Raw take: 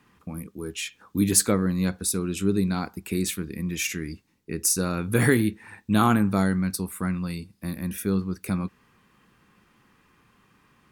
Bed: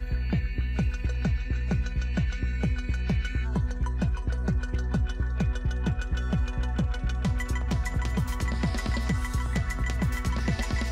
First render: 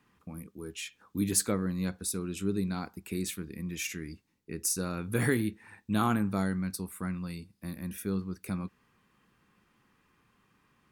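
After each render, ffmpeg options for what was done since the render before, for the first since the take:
-af "volume=0.422"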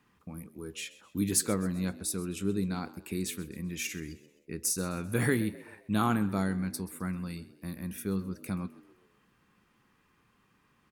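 -filter_complex "[0:a]asplit=5[s0][s1][s2][s3][s4];[s1]adelay=130,afreqshift=62,volume=0.119[s5];[s2]adelay=260,afreqshift=124,volume=0.0525[s6];[s3]adelay=390,afreqshift=186,volume=0.0229[s7];[s4]adelay=520,afreqshift=248,volume=0.0101[s8];[s0][s5][s6][s7][s8]amix=inputs=5:normalize=0"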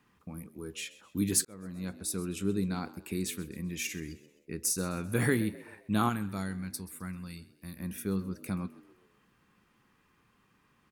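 -filter_complex "[0:a]asettb=1/sr,asplit=3[s0][s1][s2];[s0]atrim=end=3.644[s3];[s1]atrim=start=3.64:end=4.06,asetpts=PTS-STARTPTS,afade=t=in:d=0.004:c=qsin,afade=t=out:st=0.416:d=0.004:c=qsin,bandreject=f=1400:w=5.4[s4];[s2]atrim=start=4.056[s5];[s3][s4]acrossfade=d=0.004:c1=hsin:c2=qsin[s6];[s6][s5]acrossfade=d=0.004:c1=qsin:c2=hsin,asettb=1/sr,asplit=3[s7][s8][s9];[s7]atrim=end=6.094[s10];[s8]atrim=start=6.09:end=7.8,asetpts=PTS-STARTPTS,afade=t=in:d=0.004:c=qsin,afade=t=out:st=1.706:d=0.004:c=qsin,equalizer=f=440:w=0.31:g=-8[s11];[s9]atrim=start=7.796[s12];[s10][s11]acrossfade=d=0.004:c1=hsin:c2=qsin[s13];[s13][s12]acrossfade=d=0.004:c1=qsin:c2=hsin,asplit=2[s14][s15];[s14]atrim=end=1.45,asetpts=PTS-STARTPTS,afade=t=out:st=1.446:d=0.004:c=hsin[s16];[s15]atrim=start=1.45,asetpts=PTS-STARTPTS,afade=t=in:d=0.74[s17];[s16][s17]concat=n=2:v=0:a=1"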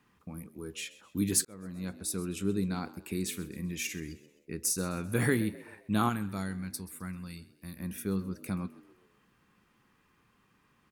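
-filter_complex "[0:a]asettb=1/sr,asplit=3[s0][s1][s2];[s0]atrim=end=3.234[s3];[s1]atrim=start=3.23:end=3.72,asetpts=PTS-STARTPTS,afade=t=in:d=0.004:c=qsin,afade=t=out:st=0.486:d=0.004:c=qsin,asplit=2[s4][s5];[s5]adelay=46,volume=0.224[s6];[s4][s6]amix=inputs=2:normalize=0,atrim=end_sample=21609[s7];[s2]atrim=start=3.716[s8];[s3][s7]acrossfade=d=0.004:c1=hsin:c2=qsin[s9];[s9][s8]acrossfade=d=0.004:c1=qsin:c2=hsin"

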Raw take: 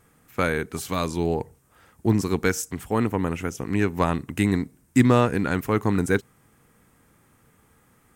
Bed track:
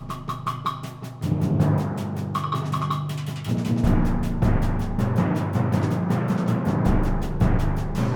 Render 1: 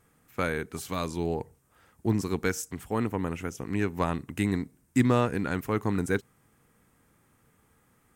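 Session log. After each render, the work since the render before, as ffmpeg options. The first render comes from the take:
-af "volume=0.531"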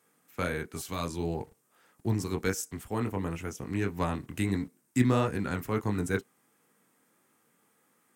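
-filter_complex "[0:a]acrossover=split=170|2900[s0][s1][s2];[s0]aeval=exprs='val(0)*gte(abs(val(0)),0.00178)':c=same[s3];[s1]flanger=delay=18:depth=6.4:speed=1.5[s4];[s3][s4][s2]amix=inputs=3:normalize=0"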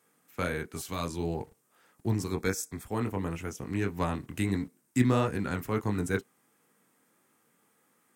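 -filter_complex "[0:a]asettb=1/sr,asplit=3[s0][s1][s2];[s0]atrim=end=2.314[s3];[s1]atrim=start=2.31:end=2.86,asetpts=PTS-STARTPTS,afade=t=in:d=0.004:c=qsin,afade=t=out:st=0.546:d=0.004:c=qsin,asuperstop=centerf=2900:order=20:qfactor=6.1[s4];[s2]atrim=start=2.856[s5];[s3][s4]acrossfade=d=0.004:c1=hsin:c2=qsin[s6];[s6][s5]acrossfade=d=0.004:c1=qsin:c2=hsin"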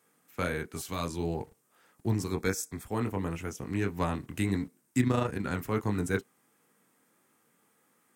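-filter_complex "[0:a]asettb=1/sr,asplit=3[s0][s1][s2];[s0]atrim=end=5.004[s3];[s1]atrim=start=5:end=5.45,asetpts=PTS-STARTPTS,afade=t=in:d=0.004:c=qsin,afade=t=out:st=0.446:d=0.004:c=qsin,tremolo=f=27:d=0.519[s4];[s2]atrim=start=5.446[s5];[s3][s4]acrossfade=d=0.004:c1=hsin:c2=qsin[s6];[s6][s5]acrossfade=d=0.004:c1=qsin:c2=hsin"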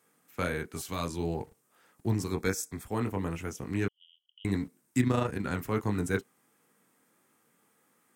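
-filter_complex "[0:a]asettb=1/sr,asplit=3[s0][s1][s2];[s0]atrim=end=3.884[s3];[s1]atrim=start=3.88:end=4.45,asetpts=PTS-STARTPTS,afade=t=in:d=0.004:c=qsin,afade=t=out:st=0.566:d=0.004:c=qsin,asuperpass=centerf=3100:order=8:qfactor=7.4[s4];[s2]atrim=start=4.446[s5];[s3][s4]acrossfade=d=0.004:c1=hsin:c2=qsin[s6];[s6][s5]acrossfade=d=0.004:c1=qsin:c2=hsin"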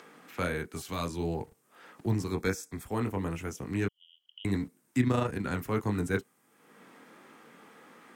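-filter_complex "[0:a]acrossover=split=150|4700[s0][s1][s2];[s1]acompressor=mode=upward:threshold=0.0112:ratio=2.5[s3];[s2]alimiter=level_in=3.76:limit=0.0631:level=0:latency=1:release=129,volume=0.266[s4];[s0][s3][s4]amix=inputs=3:normalize=0"

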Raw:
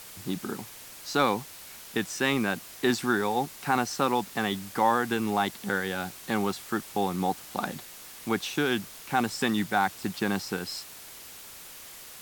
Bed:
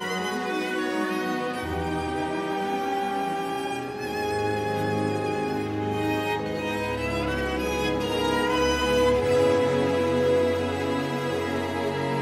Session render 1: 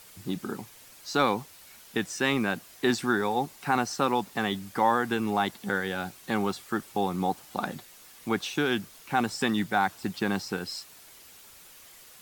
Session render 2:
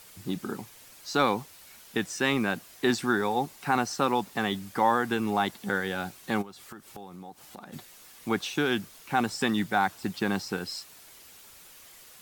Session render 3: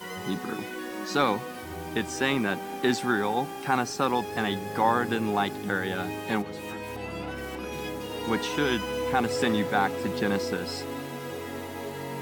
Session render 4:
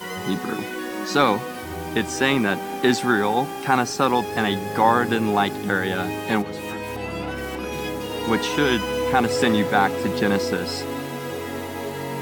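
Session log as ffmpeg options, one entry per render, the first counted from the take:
-af "afftdn=nr=7:nf=-46"
-filter_complex "[0:a]asplit=3[s0][s1][s2];[s0]afade=t=out:st=6.41:d=0.02[s3];[s1]acompressor=threshold=0.00794:ratio=5:attack=3.2:release=140:knee=1:detection=peak,afade=t=in:st=6.41:d=0.02,afade=t=out:st=7.72:d=0.02[s4];[s2]afade=t=in:st=7.72:d=0.02[s5];[s3][s4][s5]amix=inputs=3:normalize=0"
-filter_complex "[1:a]volume=0.355[s0];[0:a][s0]amix=inputs=2:normalize=0"
-af "volume=2"

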